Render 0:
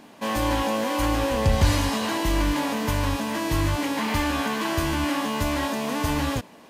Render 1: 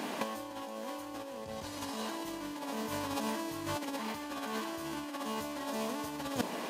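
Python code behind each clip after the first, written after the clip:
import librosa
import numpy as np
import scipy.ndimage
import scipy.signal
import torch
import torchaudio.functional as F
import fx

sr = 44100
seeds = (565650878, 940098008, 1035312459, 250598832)

y = scipy.signal.sosfilt(scipy.signal.butter(2, 220.0, 'highpass', fs=sr, output='sos'), x)
y = fx.dynamic_eq(y, sr, hz=2100.0, q=1.1, threshold_db=-44.0, ratio=4.0, max_db=-5)
y = fx.over_compress(y, sr, threshold_db=-35.0, ratio=-0.5)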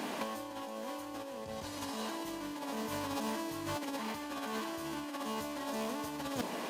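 y = 10.0 ** (-28.0 / 20.0) * np.tanh(x / 10.0 ** (-28.0 / 20.0))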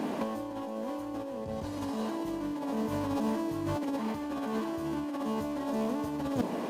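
y = fx.tilt_shelf(x, sr, db=7.5, hz=940.0)
y = y * librosa.db_to_amplitude(2.0)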